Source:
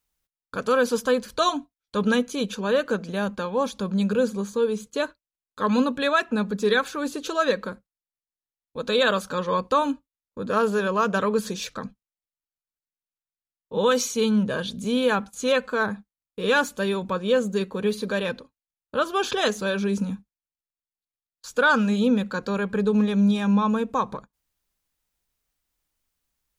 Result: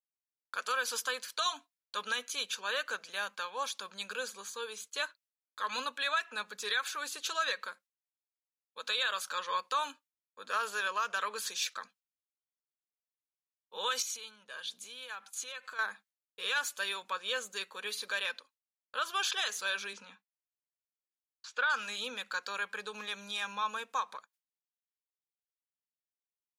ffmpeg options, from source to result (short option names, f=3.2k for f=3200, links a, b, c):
-filter_complex "[0:a]asettb=1/sr,asplit=3[a][b][c];[a]atrim=end=14.024[d];[b]atrim=start=14.02:end=15.79,asetpts=PTS-STARTPTS,afade=t=in:d=0.004:c=qsin,afade=t=out:st=1.766:d=0.004:c=qsin,acompressor=threshold=-33dB:ratio=5:attack=3.2:release=140:knee=1:detection=peak[e];[c]atrim=start=15.786[f];[d][e]acrossfade=d=0.004:c1=hsin:c2=qsin[g];[g][f]acrossfade=d=0.004:c1=qsin:c2=hsin,asettb=1/sr,asplit=3[h][i][j];[h]atrim=end=19.934[k];[i]atrim=start=19.93:end=21.7,asetpts=PTS-STARTPTS,afade=t=in:d=0.004:c=qsin,afade=t=out:st=1.766:d=0.004:c=qsin,highpass=150,lowpass=3.6k[l];[j]atrim=start=21.696[m];[k][l]acrossfade=d=0.004:c1=hsin:c2=qsin[n];[n][m]acrossfade=d=0.004:c1=qsin:c2=hsin,highpass=1.5k,agate=range=-33dB:threshold=-58dB:ratio=3:detection=peak,alimiter=limit=-21.5dB:level=0:latency=1:release=94"